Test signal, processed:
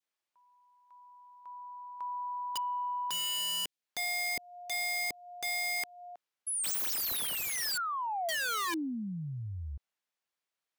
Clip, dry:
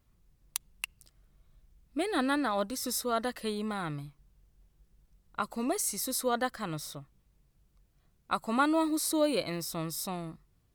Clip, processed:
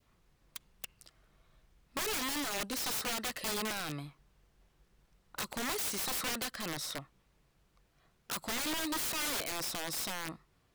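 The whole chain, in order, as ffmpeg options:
-filter_complex "[0:a]adynamicequalizer=threshold=0.00708:dfrequency=1300:dqfactor=1.1:tfrequency=1300:tqfactor=1.1:attack=5:release=100:ratio=0.375:range=3.5:mode=cutabove:tftype=bell,asplit=2[a][b];[b]highpass=f=720:p=1,volume=15dB,asoftclip=type=tanh:threshold=-10dB[c];[a][c]amix=inputs=2:normalize=0,lowpass=f=2.8k:p=1,volume=-6dB,acrossover=split=420|2100[d][e][f];[d]acompressor=threshold=-37dB:ratio=4[g];[e]acompressor=threshold=-36dB:ratio=4[h];[f]acompressor=threshold=-30dB:ratio=4[i];[g][h][i]amix=inputs=3:normalize=0,aeval=exprs='(mod(31.6*val(0)+1,2)-1)/31.6':c=same"

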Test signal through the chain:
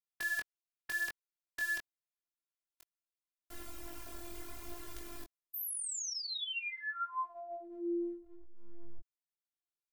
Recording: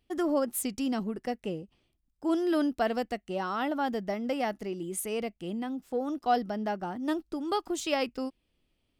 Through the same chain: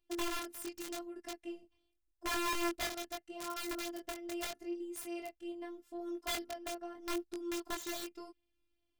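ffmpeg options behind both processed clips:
-af "afftfilt=real='hypot(re,im)*cos(PI*b)':imag='0':win_size=512:overlap=0.75,aeval=exprs='(mod(18.8*val(0)+1,2)-1)/18.8':c=same,flanger=delay=19.5:depth=3.5:speed=0.81,volume=-2.5dB"

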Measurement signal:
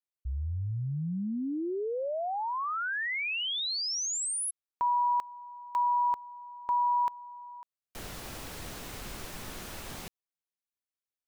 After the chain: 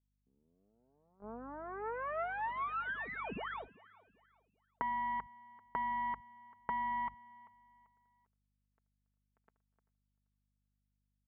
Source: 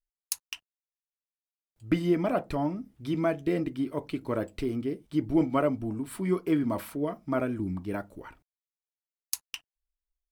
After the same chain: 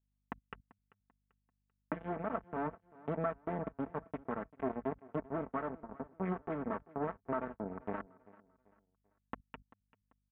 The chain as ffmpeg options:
-filter_complex "[0:a]aeval=exprs='if(lt(val(0),0),0.251*val(0),val(0))':c=same,tiltshelf=f=970:g=-4.5,aresample=8000,acrusher=bits=4:mix=0:aa=0.5,aresample=44100,acompressor=threshold=-38dB:ratio=10:attack=1.9:release=688:knee=1:detection=rms,adynamicequalizer=threshold=0.00112:dfrequency=540:dqfactor=0.73:tfrequency=540:tqfactor=0.73:attack=5:release=100:ratio=0.375:range=1.5:mode=cutabove:tftype=bell,highpass=130,aecho=1:1:4.5:0.51,aeval=exprs='val(0)+0.000251*(sin(2*PI*50*n/s)+sin(2*PI*2*50*n/s)/2+sin(2*PI*3*50*n/s)/3+sin(2*PI*4*50*n/s)/4+sin(2*PI*5*50*n/s)/5)':c=same,agate=range=-22dB:threshold=-59dB:ratio=16:release=77:detection=rms,lowpass=f=1.5k:w=0.5412,lowpass=f=1.5k:w=1.3066,asplit=2[a][b];[b]aecho=0:1:390|780|1170:0.0891|0.0321|0.0116[c];[a][c]amix=inputs=2:normalize=0,volume=12.5dB"

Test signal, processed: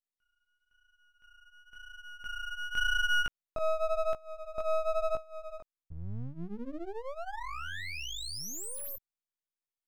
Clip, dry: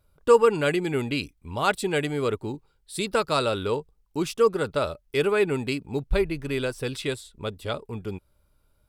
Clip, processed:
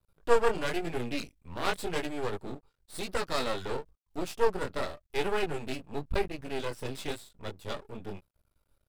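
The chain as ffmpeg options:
-af "flanger=delay=16.5:depth=6.9:speed=0.95,aeval=exprs='max(val(0),0)':c=same"

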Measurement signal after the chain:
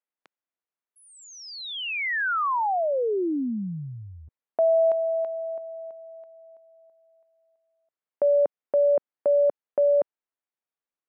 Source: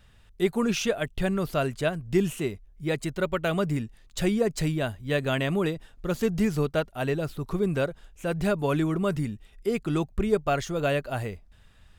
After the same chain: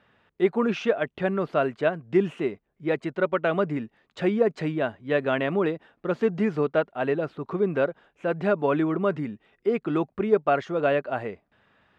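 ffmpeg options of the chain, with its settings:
-af "highpass=250,lowpass=2k,volume=4dB"

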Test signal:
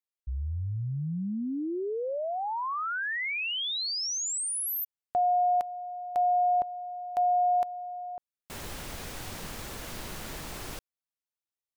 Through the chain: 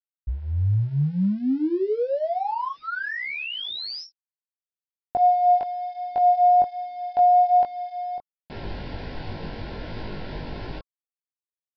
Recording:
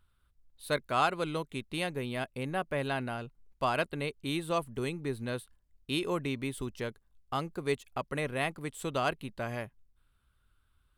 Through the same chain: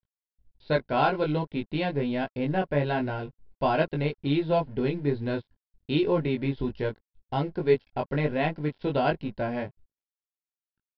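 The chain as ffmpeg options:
-af "tiltshelf=f=1.1k:g=5,aresample=11025,aeval=exprs='sgn(val(0))*max(abs(val(0))-0.00188,0)':c=same,aresample=44100,flanger=delay=19:depth=2.1:speed=1.3,asuperstop=centerf=1200:order=8:qfactor=5.4,volume=7.5dB"

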